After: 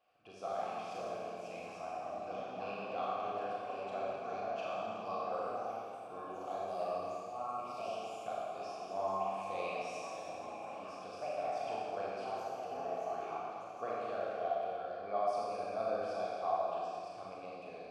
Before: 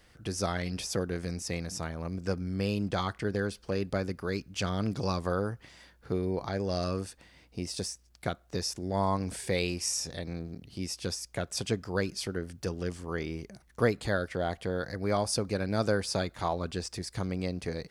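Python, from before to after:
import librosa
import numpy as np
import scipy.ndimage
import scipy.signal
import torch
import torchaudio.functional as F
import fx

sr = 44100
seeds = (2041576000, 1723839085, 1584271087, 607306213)

y = fx.echo_pitch(x, sr, ms=246, semitones=4, count=3, db_per_echo=-6.0)
y = fx.vowel_filter(y, sr, vowel='a')
y = fx.rev_schroeder(y, sr, rt60_s=2.3, comb_ms=28, drr_db=-6.0)
y = y * 10.0 ** (-2.5 / 20.0)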